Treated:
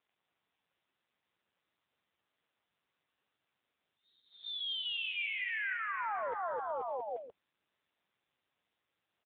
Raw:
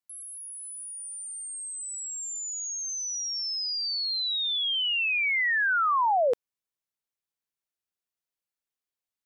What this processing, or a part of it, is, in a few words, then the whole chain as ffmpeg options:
voicemail: -filter_complex "[0:a]asettb=1/sr,asplit=3[a][b][c];[a]atrim=end=2.004[d];[b]atrim=start=2:end=3.31,asetpts=PTS-STARTPTS,afade=t=in:d=0.004:c=qsin,afade=t=out:st=1.306:d=0.004:c=qsin,lowpass=f=5.8k:w=0.5412,lowpass=f=5.8k:w=1.3066[e];[c]atrim=start=3.306[f];[d][e]acrossfade=d=0.004:c1=hsin:c2=qsin[g];[g][f]acrossfade=d=0.004:c1=qsin:c2=hsin,highpass=400,lowpass=2.7k,aecho=1:1:260|481|668.8|828.5|964.2:0.631|0.398|0.251|0.158|0.1,acompressor=threshold=-34dB:ratio=12,volume=2dB" -ar 8000 -c:a libopencore_amrnb -b:a 6700

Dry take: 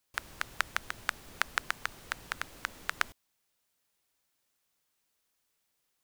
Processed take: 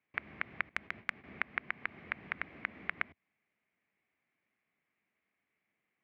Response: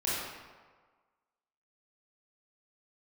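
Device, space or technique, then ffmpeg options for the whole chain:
bass amplifier: -filter_complex "[0:a]acompressor=threshold=-33dB:ratio=3,highpass=f=81:w=0.5412,highpass=f=81:w=1.3066,equalizer=f=110:t=q:w=4:g=-7,equalizer=f=210:t=q:w=4:g=5,equalizer=f=520:t=q:w=4:g=-6,equalizer=f=920:t=q:w=4:g=-7,equalizer=f=1.4k:t=q:w=4:g=-6,equalizer=f=2.2k:t=q:w=4:g=9,lowpass=f=2.2k:w=0.5412,lowpass=f=2.2k:w=1.3066,asettb=1/sr,asplit=3[a][b][c];[a]atrim=end=0.694[d];[b]atrim=start=0.69:end=1.24,asetpts=PTS-STARTPTS,afade=t=in:d=0.004:c=qsin,afade=t=out:st=0.546:d=0.004:c=qsin,agate=range=-14dB:threshold=-52dB:ratio=16:detection=peak[e];[c]atrim=start=1.236[f];[d][e]acrossfade=d=0.004:c1=hsin:c2=qsin[g];[g][f]acrossfade=d=0.004:c1=qsin:c2=hsin,volume=3dB"

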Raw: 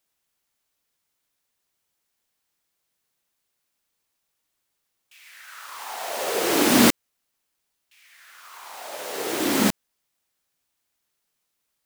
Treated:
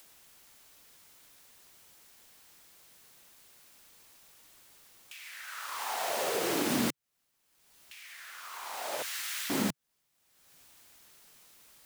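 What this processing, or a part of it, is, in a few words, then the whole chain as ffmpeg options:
upward and downward compression: -filter_complex "[0:a]acompressor=mode=upward:threshold=-42dB:ratio=2.5,acompressor=threshold=-29dB:ratio=5,asettb=1/sr,asplit=3[a][b][c];[a]atrim=end=9.024[d];[b]atrim=start=9.02:end=9.5,asetpts=PTS-STARTPTS,afade=t=in:d=0.004:c=qsin,afade=t=out:st=0.476:d=0.004:c=qsin,highpass=f=1.5k:w=0.5412,highpass=f=1.5k:w=1.3066[e];[c]atrim=start=9.496[f];[d][e]acrossfade=d=0.004:c1=hsin:c2=qsin[g];[g][f]acrossfade=d=0.004:c1=qsin:c2=hsin,adynamicequalizer=threshold=0.00141:dfrequency=140:dqfactor=1.9:tfrequency=140:tqfactor=1.9:attack=5:release=100:ratio=0.375:range=3.5:mode=boostabove:tftype=bell"

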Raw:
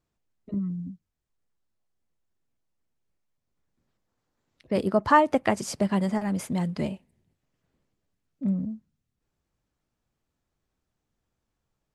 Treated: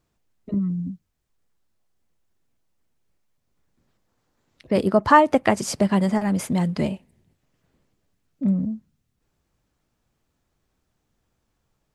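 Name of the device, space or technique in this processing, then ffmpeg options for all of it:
parallel compression: -filter_complex "[0:a]asplit=2[a][b];[b]acompressor=threshold=-35dB:ratio=6,volume=-6dB[c];[a][c]amix=inputs=2:normalize=0,volume=4dB"

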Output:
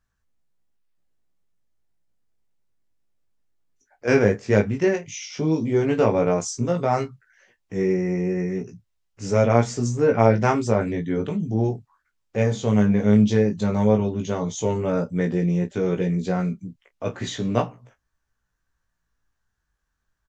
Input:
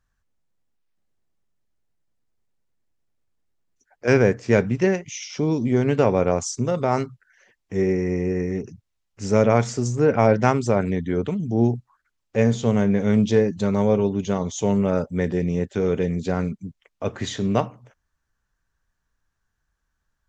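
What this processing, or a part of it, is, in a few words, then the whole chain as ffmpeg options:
double-tracked vocal: -filter_complex "[0:a]asplit=2[a][b];[b]adelay=29,volume=-14dB[c];[a][c]amix=inputs=2:normalize=0,flanger=delay=16.5:depth=2.7:speed=0.12,volume=2dB"

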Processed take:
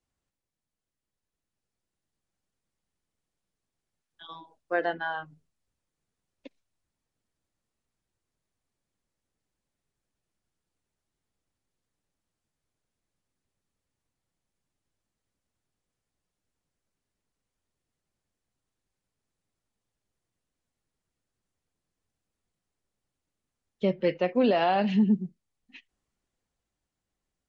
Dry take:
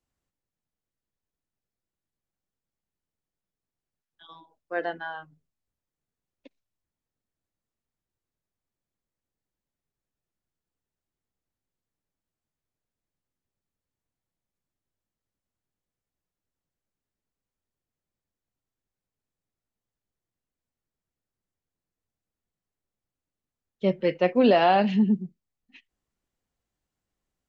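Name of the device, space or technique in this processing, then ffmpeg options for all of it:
low-bitrate web radio: -af "dynaudnorm=f=100:g=31:m=5dB,alimiter=limit=-14.5dB:level=0:latency=1:release=453" -ar 44100 -c:a libmp3lame -b:a 48k

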